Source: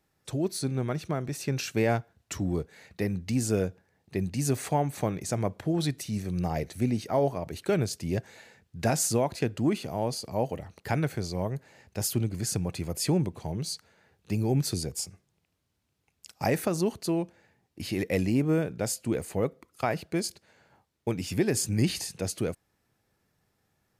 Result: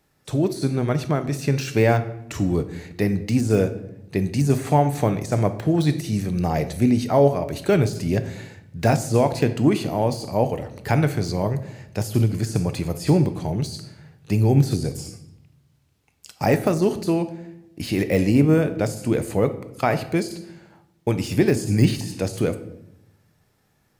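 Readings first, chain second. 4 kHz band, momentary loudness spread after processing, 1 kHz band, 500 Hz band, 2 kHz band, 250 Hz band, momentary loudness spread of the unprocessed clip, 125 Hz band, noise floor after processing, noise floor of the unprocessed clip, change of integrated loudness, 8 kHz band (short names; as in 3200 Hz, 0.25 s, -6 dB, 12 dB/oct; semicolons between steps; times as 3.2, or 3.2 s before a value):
+2.5 dB, 11 LU, +8.0 dB, +8.0 dB, +7.0 dB, +8.0 dB, 8 LU, +9.0 dB, -64 dBFS, -76 dBFS, +8.0 dB, -2.0 dB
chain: shoebox room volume 240 m³, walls mixed, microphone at 0.36 m; de-esser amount 90%; gain +7.5 dB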